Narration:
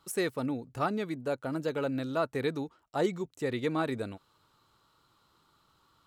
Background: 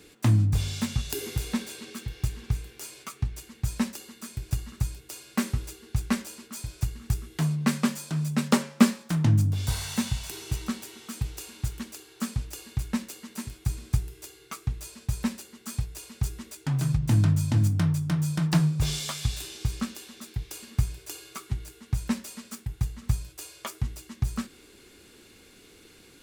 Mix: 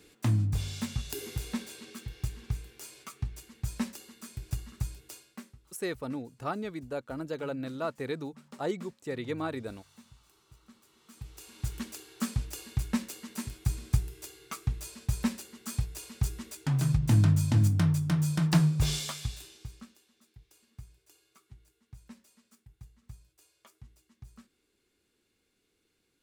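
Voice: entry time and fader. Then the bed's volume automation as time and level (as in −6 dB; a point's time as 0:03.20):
5.65 s, −3.5 dB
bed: 0:05.12 −5.5 dB
0:05.58 −28 dB
0:10.61 −28 dB
0:11.77 −1 dB
0:18.95 −1 dB
0:20.04 −22.5 dB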